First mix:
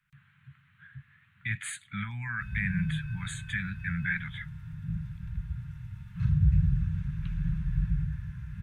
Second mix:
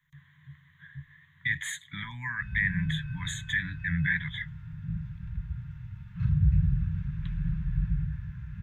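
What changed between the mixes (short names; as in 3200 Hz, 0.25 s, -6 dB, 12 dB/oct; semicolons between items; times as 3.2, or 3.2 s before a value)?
speech: add ripple EQ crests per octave 1.1, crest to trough 16 dB; background: add air absorption 110 m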